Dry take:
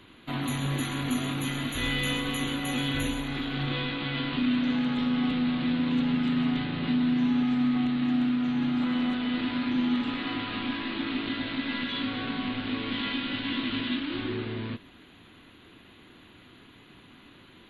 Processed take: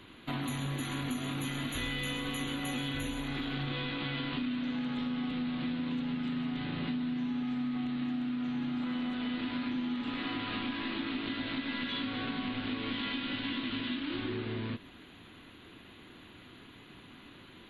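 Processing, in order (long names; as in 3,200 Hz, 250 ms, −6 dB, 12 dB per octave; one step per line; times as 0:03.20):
downward compressor, threshold −32 dBFS, peak gain reduction 10 dB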